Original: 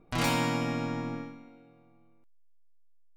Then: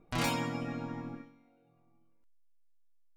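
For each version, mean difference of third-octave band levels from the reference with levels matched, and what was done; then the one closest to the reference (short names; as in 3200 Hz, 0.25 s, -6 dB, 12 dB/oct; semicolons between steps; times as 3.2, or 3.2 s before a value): 3.5 dB: reverb removal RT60 0.92 s; gain -2.5 dB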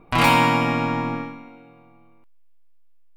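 2.0 dB: fifteen-band EQ 1000 Hz +8 dB, 2500 Hz +6 dB, 6300 Hz -7 dB; gain +8 dB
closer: second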